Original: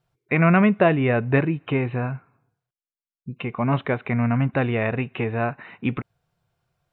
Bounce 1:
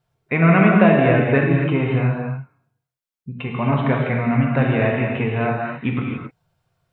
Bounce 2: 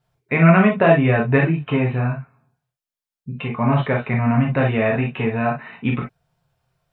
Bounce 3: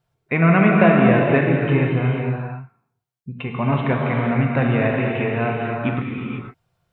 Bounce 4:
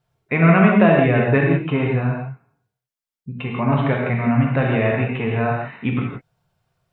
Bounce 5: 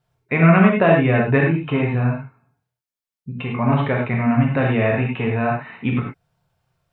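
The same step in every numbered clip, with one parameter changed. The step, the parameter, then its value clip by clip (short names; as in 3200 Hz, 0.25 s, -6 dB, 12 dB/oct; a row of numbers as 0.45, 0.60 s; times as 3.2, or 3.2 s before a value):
non-linear reverb, gate: 300, 80, 530, 200, 130 ms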